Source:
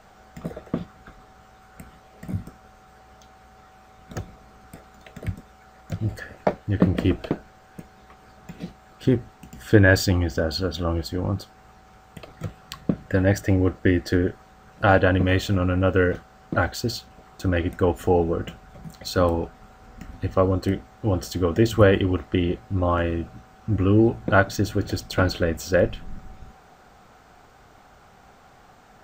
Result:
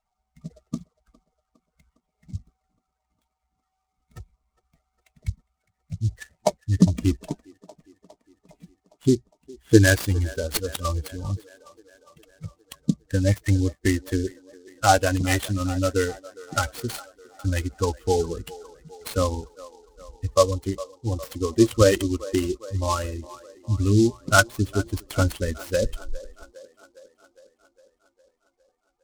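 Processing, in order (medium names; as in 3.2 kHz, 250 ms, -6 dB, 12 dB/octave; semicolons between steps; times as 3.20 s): expander on every frequency bin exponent 2; low-pass 4 kHz 12 dB/octave; in parallel at 0 dB: compression, threshold -30 dBFS, peak gain reduction 17.5 dB; on the sum: phaser 0.16 Hz, delay 3.3 ms, feedback 35%; on a send: feedback echo behind a band-pass 408 ms, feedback 62%, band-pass 800 Hz, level -17 dB; on the sum: delay time shaken by noise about 5.3 kHz, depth 0.049 ms; trim +1.5 dB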